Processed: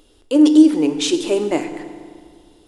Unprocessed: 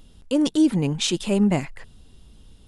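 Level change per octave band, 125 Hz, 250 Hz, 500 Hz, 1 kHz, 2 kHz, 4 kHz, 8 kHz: −12.5, +7.0, +7.0, +4.0, +2.5, +2.5, +2.5 decibels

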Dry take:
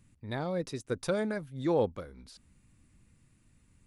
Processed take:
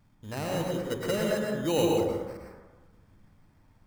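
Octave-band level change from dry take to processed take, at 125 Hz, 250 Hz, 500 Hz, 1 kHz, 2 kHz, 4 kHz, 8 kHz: +3.5, +4.0, +4.0, +4.0, +4.0, +9.5, +9.0 decibels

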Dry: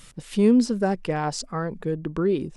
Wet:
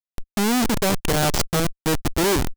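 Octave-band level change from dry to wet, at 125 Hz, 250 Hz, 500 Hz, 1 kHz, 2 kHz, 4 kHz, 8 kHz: +4.0, −1.0, +0.5, +5.0, +9.5, +12.0, +12.0 decibels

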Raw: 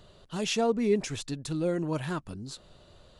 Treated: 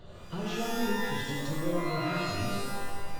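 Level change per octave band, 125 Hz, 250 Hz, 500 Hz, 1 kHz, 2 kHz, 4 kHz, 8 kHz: 0.0, −2.5, −5.0, +3.5, +5.0, −0.5, −3.5 decibels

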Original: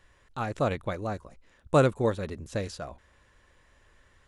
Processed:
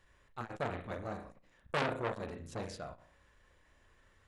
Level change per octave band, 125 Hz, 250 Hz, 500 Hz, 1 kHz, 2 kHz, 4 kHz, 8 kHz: −13.0, −12.0, −12.0, −7.5, −4.0, −4.0, −9.5 decibels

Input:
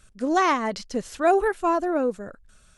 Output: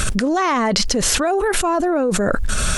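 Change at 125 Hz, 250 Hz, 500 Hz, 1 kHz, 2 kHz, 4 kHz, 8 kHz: can't be measured, +6.5 dB, +4.0 dB, +3.0 dB, +6.5 dB, +16.5 dB, +21.0 dB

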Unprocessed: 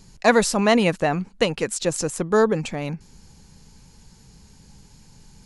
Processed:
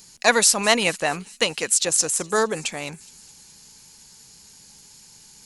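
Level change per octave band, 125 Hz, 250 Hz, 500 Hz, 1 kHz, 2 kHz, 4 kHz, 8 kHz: −9.5, −8.0, −4.0, −1.0, +2.5, +6.0, +10.0 decibels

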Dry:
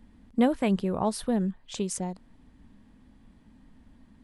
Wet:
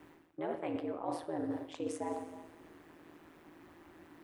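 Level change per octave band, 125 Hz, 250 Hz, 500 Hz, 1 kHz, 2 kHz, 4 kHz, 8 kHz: −18.0, −12.5, −8.0, −7.5, −9.5, −14.0, −16.5 decibels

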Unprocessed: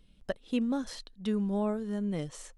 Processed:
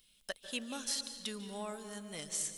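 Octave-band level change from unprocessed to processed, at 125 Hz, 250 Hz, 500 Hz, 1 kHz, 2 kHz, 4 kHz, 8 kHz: −16.0, −15.0, −10.5, −5.5, +1.0, +6.5, +11.5 decibels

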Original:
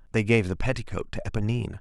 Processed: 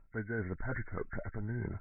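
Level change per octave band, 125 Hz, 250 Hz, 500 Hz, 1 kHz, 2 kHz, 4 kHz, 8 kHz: −11.5 dB, −13.0 dB, −13.5 dB, −8.0 dB, −10.0 dB, below −40 dB, below −35 dB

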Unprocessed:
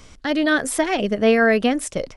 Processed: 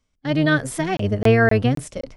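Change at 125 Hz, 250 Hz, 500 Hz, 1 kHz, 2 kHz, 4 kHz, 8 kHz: +16.5, −0.5, −1.5, −1.5, −1.0, −3.5, −6.5 decibels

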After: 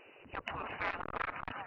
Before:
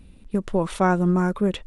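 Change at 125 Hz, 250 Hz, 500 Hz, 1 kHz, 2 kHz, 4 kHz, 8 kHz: −27.5 dB, −29.5 dB, −21.5 dB, −12.5 dB, −6.5 dB, −10.5 dB, below −30 dB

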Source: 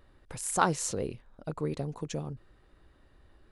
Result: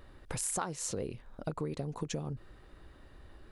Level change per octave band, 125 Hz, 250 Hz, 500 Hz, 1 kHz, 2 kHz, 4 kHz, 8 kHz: −2.5, −4.0, −4.5, −9.5, −9.0, −3.0, −1.5 decibels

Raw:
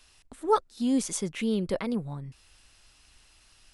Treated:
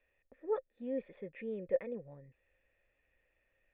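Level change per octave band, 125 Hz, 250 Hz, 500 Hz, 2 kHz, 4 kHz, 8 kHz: −18.0 dB, −16.5 dB, −6.0 dB, −12.0 dB, below −30 dB, below −40 dB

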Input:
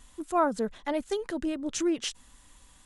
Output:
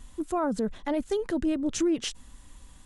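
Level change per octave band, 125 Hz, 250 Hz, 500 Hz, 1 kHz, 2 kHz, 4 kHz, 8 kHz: can't be measured, +3.5 dB, +0.5 dB, −4.0 dB, −1.5 dB, 0.0 dB, 0.0 dB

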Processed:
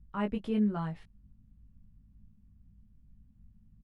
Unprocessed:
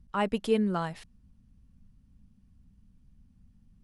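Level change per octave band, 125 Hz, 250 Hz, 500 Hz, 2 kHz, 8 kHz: 0.0 dB, 0.0 dB, −8.5 dB, −8.0 dB, below −15 dB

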